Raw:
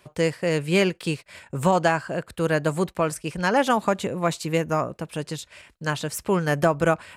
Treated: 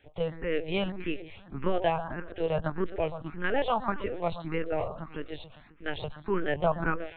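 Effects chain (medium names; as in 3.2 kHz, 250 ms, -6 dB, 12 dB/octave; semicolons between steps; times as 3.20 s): on a send: echo whose repeats swap between lows and highs 128 ms, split 1.1 kHz, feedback 60%, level -11 dB; on the sum: LPC vocoder at 8 kHz pitch kept; barber-pole phaser +1.7 Hz; trim -3.5 dB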